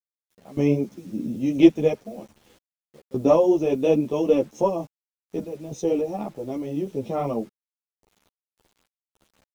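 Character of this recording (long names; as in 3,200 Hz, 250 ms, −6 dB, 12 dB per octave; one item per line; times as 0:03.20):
sample-and-hold tremolo, depth 100%
a quantiser's noise floor 10 bits, dither none
a shimmering, thickened sound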